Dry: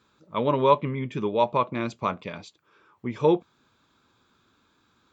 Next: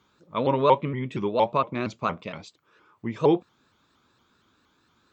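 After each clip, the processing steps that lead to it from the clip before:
pitch modulation by a square or saw wave saw up 4.3 Hz, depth 160 cents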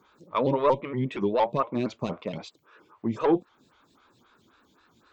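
in parallel at +1.5 dB: downward compressor, threshold −31 dBFS, peak gain reduction 17.5 dB
on the sum: soft clipping −12 dBFS, distortion −16 dB
phaser with staggered stages 3.8 Hz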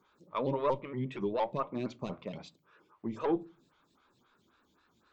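on a send at −20.5 dB: low-shelf EQ 350 Hz +11.5 dB + convolution reverb RT60 0.35 s, pre-delay 5 ms
on the sum: level −8 dB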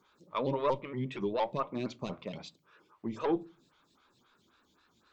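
parametric band 4,800 Hz +5 dB 2 octaves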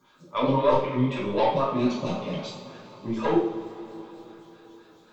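coupled-rooms reverb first 0.55 s, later 4.4 s, from −18 dB, DRR −7 dB
level +1.5 dB

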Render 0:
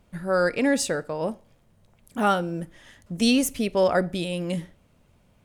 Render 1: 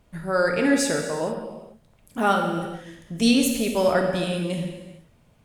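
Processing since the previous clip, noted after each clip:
convolution reverb, pre-delay 3 ms, DRR 2.5 dB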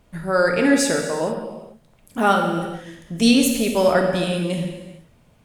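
mains-hum notches 50/100/150 Hz
level +3.5 dB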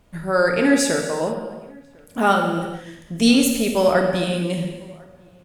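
slap from a distant wall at 180 metres, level −27 dB

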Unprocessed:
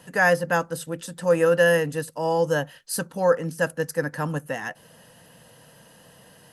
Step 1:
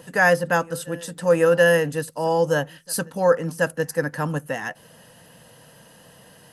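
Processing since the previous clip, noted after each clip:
backwards echo 728 ms −24 dB
level +2 dB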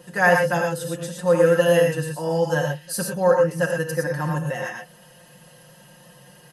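comb filter 5.6 ms, depth 80%
reverb whose tail is shaped and stops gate 140 ms rising, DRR 1.5 dB
level −4.5 dB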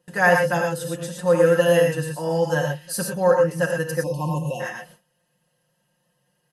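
noise gate with hold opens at −35 dBFS
time-frequency box erased 0:04.04–0:04.60, 1,100–2,500 Hz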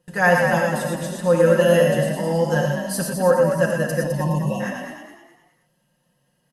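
low-shelf EQ 110 Hz +10 dB
on a send: echo with shifted repeats 208 ms, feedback 36%, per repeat +48 Hz, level −7 dB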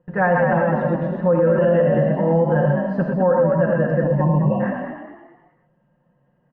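Bessel low-pass filter 1,200 Hz, order 4
brickwall limiter −14.5 dBFS, peak gain reduction 8.5 dB
level +5.5 dB

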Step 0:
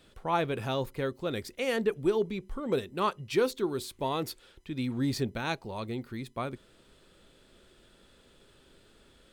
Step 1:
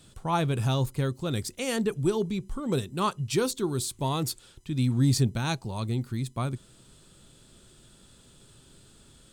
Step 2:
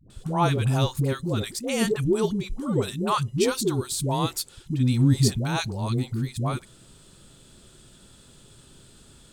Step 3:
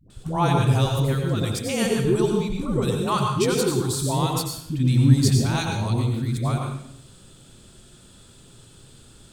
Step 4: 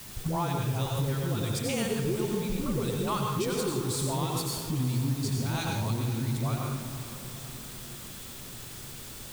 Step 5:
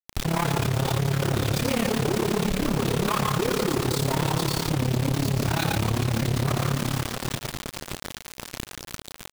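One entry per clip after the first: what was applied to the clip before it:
octave-band graphic EQ 125/500/2,000/8,000 Hz +9/−6/−6/+10 dB; level +3.5 dB
all-pass dispersion highs, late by 102 ms, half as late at 510 Hz; level +3.5 dB
convolution reverb RT60 0.70 s, pre-delay 83 ms, DRR 2 dB
downward compressor, threshold −30 dBFS, peak gain reduction 19 dB; background noise white −48 dBFS; feedback delay with all-pass diffusion 463 ms, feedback 60%, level −13 dB; level +2.5 dB
high-frequency loss of the air 120 metres; log-companded quantiser 2 bits; amplitude modulation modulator 35 Hz, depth 70%; level +5.5 dB

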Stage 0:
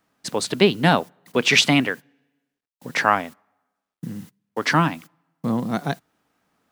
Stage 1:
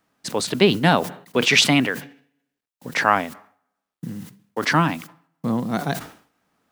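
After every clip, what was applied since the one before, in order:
level that may fall only so fast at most 120 dB per second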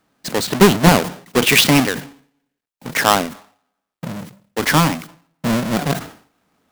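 each half-wave held at its own peak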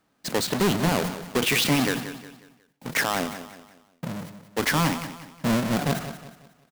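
brickwall limiter −11.5 dBFS, peak gain reduction 10 dB
on a send: repeating echo 181 ms, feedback 39%, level −12 dB
on the sum: level −4.5 dB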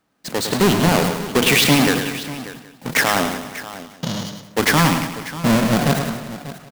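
automatic gain control gain up to 7 dB
gain on a spectral selection 0:03.79–0:04.43, 2,800–7,100 Hz +11 dB
multi-tap delay 106/591 ms −7.5/−15 dB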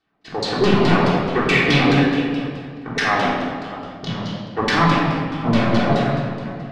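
auto-filter low-pass saw down 4.7 Hz 420–4,900 Hz
rectangular room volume 1,500 cubic metres, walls mixed, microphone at 3.5 metres
level −8.5 dB

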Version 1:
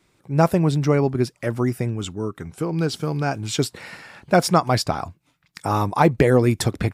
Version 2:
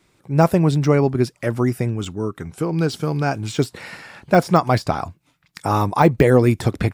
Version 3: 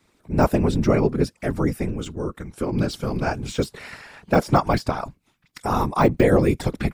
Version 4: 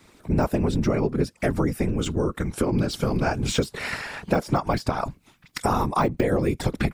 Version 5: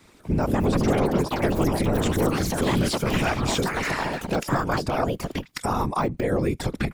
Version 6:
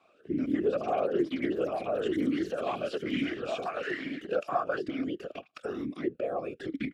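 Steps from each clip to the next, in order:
de-essing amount 65%; level +2.5 dB
random phases in short frames; level −3 dB
downward compressor 6 to 1, threshold −29 dBFS, peak gain reduction 16.5 dB; level +9 dB
brickwall limiter −14.5 dBFS, peak gain reduction 7.5 dB; delay with pitch and tempo change per echo 254 ms, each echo +5 semitones, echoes 3
formant filter swept between two vowels a-i 1.1 Hz; level +4 dB

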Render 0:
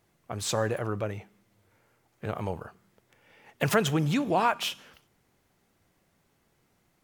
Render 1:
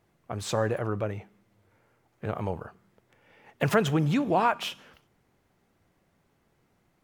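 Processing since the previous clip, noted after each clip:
high-shelf EQ 3,100 Hz −8 dB
level +1.5 dB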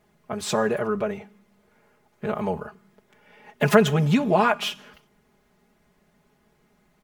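comb filter 4.8 ms, depth 88%
level +3 dB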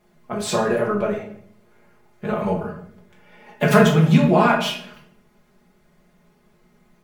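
rectangular room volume 86 cubic metres, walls mixed, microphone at 0.88 metres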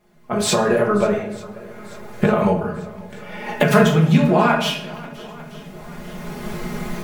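camcorder AGC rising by 15 dB per second
feedback echo with a long and a short gap by turns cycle 893 ms, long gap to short 1.5 to 1, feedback 51%, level −21 dB

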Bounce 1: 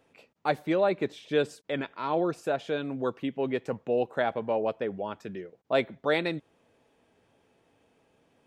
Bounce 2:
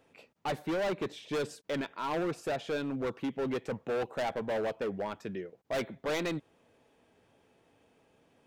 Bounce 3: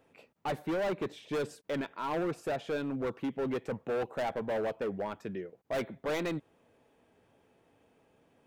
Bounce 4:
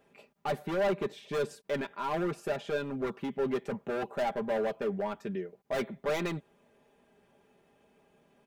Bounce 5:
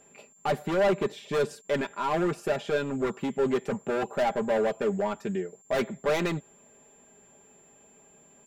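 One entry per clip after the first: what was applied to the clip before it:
hard clipping −29 dBFS, distortion −7 dB
parametric band 5,000 Hz −4.5 dB 2 octaves
comb filter 5 ms, depth 63%
steady tone 7,300 Hz −62 dBFS; highs frequency-modulated by the lows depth 0.1 ms; level +5 dB

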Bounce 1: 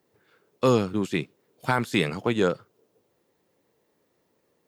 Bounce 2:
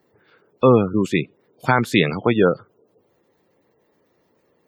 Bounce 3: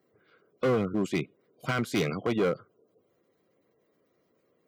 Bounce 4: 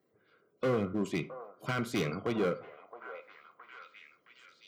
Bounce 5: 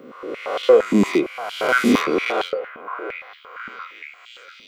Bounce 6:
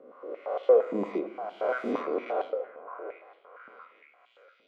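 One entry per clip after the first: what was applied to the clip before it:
gate on every frequency bin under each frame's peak −25 dB strong; level +7 dB
hard clipping −14.5 dBFS, distortion −7 dB; notch comb filter 890 Hz; level −6.5 dB
echo through a band-pass that steps 667 ms, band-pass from 820 Hz, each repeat 0.7 octaves, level −7.5 dB; on a send at −11.5 dB: convolution reverb RT60 0.35 s, pre-delay 28 ms; on the sum: level −4.5 dB
peak hold with a rise ahead of every peak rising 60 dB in 1.30 s; high-pass on a step sequencer 8.7 Hz 230–3,300 Hz; level +8.5 dB
resonant band-pass 620 Hz, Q 2.1; rectangular room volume 430 cubic metres, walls mixed, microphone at 0.33 metres; level −4 dB

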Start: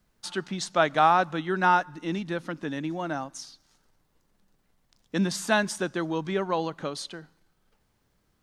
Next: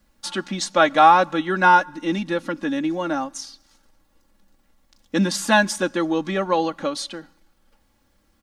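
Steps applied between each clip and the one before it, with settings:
comb filter 3.6 ms, depth 71%
level +5 dB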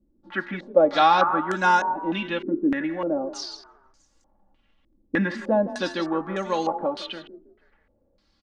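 hum removal 117.1 Hz, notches 20
echo with shifted repeats 161 ms, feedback 41%, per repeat +30 Hz, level −13.5 dB
low-pass on a step sequencer 3.3 Hz 340–7,000 Hz
level −5 dB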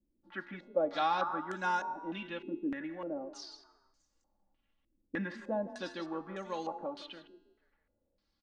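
tuned comb filter 95 Hz, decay 1.2 s, harmonics odd, mix 50%
level −7.5 dB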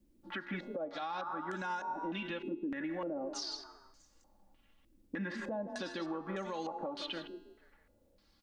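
downward compressor 10 to 1, threshold −44 dBFS, peak gain reduction 19 dB
brickwall limiter −40.5 dBFS, peak gain reduction 7 dB
level +10.5 dB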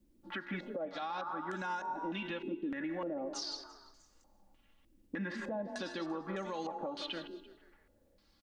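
single-tap delay 340 ms −22 dB

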